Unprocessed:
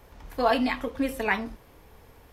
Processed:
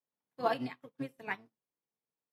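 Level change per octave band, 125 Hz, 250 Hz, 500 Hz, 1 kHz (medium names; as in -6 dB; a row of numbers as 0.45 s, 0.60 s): -5.0 dB, -13.5 dB, -10.0 dB, -9.5 dB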